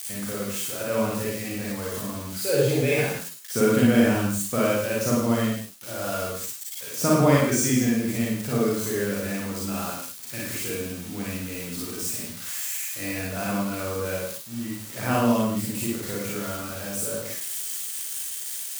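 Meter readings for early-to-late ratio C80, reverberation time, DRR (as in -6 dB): 3.5 dB, no single decay rate, -5.0 dB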